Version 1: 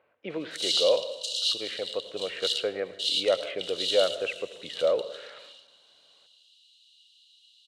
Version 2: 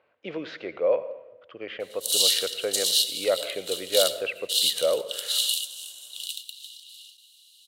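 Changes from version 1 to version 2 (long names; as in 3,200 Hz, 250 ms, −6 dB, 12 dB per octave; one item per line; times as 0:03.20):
background: entry +1.50 s
master: remove high-frequency loss of the air 130 metres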